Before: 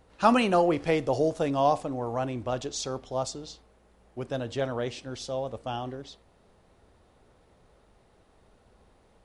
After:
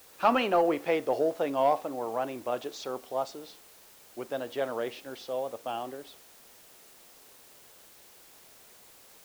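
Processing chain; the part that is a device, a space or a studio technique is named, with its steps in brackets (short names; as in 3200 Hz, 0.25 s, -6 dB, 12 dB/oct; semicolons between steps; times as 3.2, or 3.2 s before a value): tape answering machine (BPF 330–3200 Hz; soft clip -12.5 dBFS, distortion -20 dB; wow and flutter; white noise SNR 23 dB)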